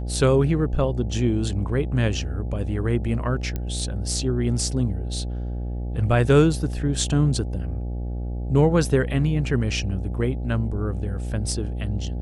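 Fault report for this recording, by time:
buzz 60 Hz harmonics 14 -28 dBFS
3.56 pop -15 dBFS

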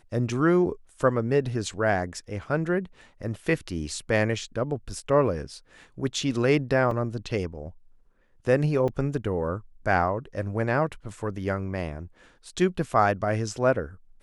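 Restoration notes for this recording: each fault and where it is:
6.91 gap 3.5 ms
8.88 gap 4.7 ms

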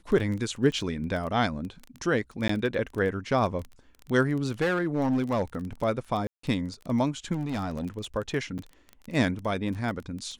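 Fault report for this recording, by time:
crackle 19/s -32 dBFS
2.48–2.49 gap 14 ms
4.61–5.43 clipped -21 dBFS
6.27–6.43 gap 0.164 s
7.33–7.86 clipped -26.5 dBFS
8.58–8.59 gap 7.2 ms

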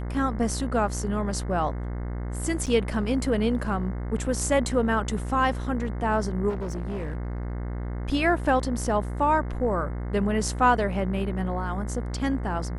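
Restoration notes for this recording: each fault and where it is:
buzz 60 Hz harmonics 36 -31 dBFS
2.66–2.67 gap 7.4 ms
6.49–7.52 clipped -27 dBFS

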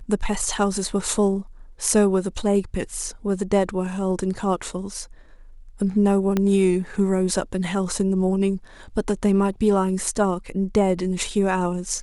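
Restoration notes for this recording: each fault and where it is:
6.37 pop -9 dBFS

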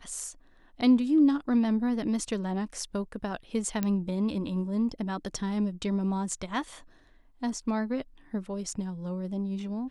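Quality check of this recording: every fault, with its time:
3.83 pop -15 dBFS

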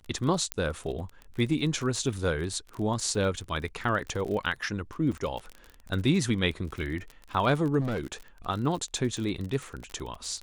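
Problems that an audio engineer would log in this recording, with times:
crackle 30/s -33 dBFS
0.52 pop -12 dBFS
5.12 gap 3.2 ms
7.8–8.14 clipped -26.5 dBFS

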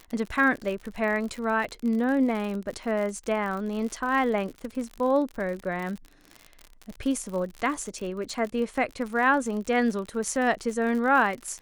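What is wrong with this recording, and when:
crackle 64/s -32 dBFS

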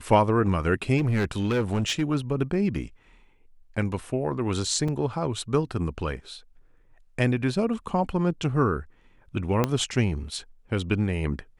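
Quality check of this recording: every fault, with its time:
0.97–2.03 clipped -20 dBFS
4.88 gap 4.5 ms
9.64 pop -9 dBFS

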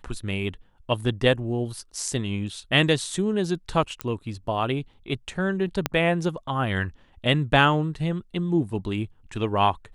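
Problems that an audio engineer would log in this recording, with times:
4.01 pop -12 dBFS
5.86 pop -7 dBFS

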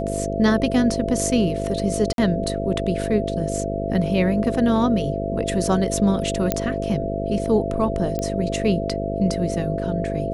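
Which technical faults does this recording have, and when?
buzz 50 Hz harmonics 11 -27 dBFS
tone 670 Hz -27 dBFS
2.13–2.18 gap 52 ms
6.52 pop -5 dBFS
8.19 pop -13 dBFS

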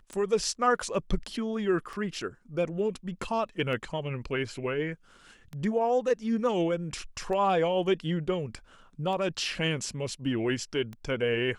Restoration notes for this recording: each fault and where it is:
tick 33 1/3 rpm -26 dBFS

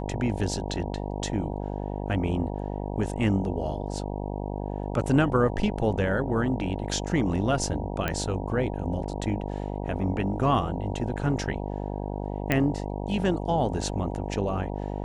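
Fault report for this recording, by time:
buzz 50 Hz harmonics 19 -32 dBFS
8.08 pop -13 dBFS
12.52 pop -10 dBFS

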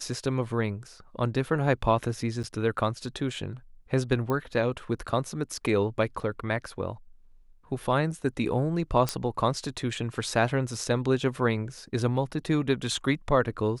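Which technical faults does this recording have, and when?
2.43–2.44 gap 8.8 ms
4.3 pop -18 dBFS
9.09 pop -11 dBFS

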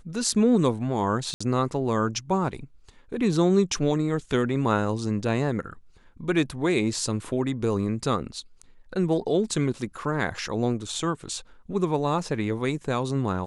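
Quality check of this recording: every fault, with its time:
1.34–1.41 gap 65 ms

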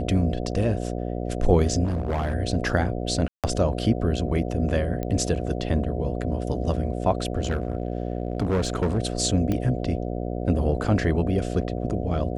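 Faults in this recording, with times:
buzz 60 Hz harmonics 12 -29 dBFS
1.84–2.35 clipped -22 dBFS
3.28–3.44 gap 0.157 s
5.03 pop -17 dBFS
7.43–8.99 clipped -19 dBFS
9.52 pop -14 dBFS

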